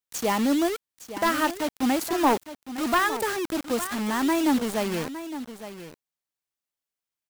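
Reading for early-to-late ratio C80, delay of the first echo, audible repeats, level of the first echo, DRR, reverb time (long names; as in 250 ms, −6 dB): no reverb audible, 861 ms, 1, −12.5 dB, no reverb audible, no reverb audible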